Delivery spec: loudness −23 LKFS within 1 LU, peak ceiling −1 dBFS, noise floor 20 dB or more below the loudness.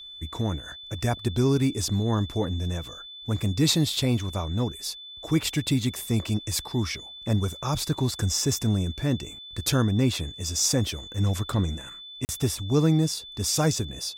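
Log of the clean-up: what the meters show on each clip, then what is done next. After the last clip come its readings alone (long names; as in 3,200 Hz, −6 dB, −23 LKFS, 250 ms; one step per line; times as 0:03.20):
number of dropouts 1; longest dropout 39 ms; interfering tone 3,500 Hz; level of the tone −40 dBFS; integrated loudness −26.0 LKFS; sample peak −10.0 dBFS; target loudness −23.0 LKFS
→ repair the gap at 0:12.25, 39 ms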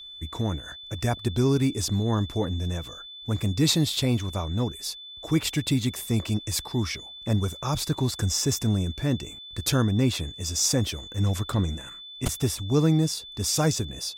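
number of dropouts 0; interfering tone 3,500 Hz; level of the tone −40 dBFS
→ notch filter 3,500 Hz, Q 30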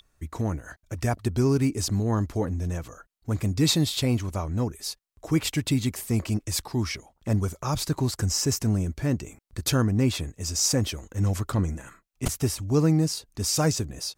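interfering tone none found; integrated loudness −26.5 LKFS; sample peak −10.5 dBFS; target loudness −23.0 LKFS
→ level +3.5 dB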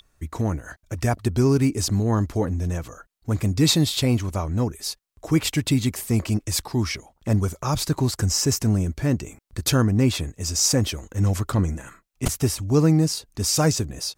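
integrated loudness −23.0 LKFS; sample peak −7.0 dBFS; background noise floor −67 dBFS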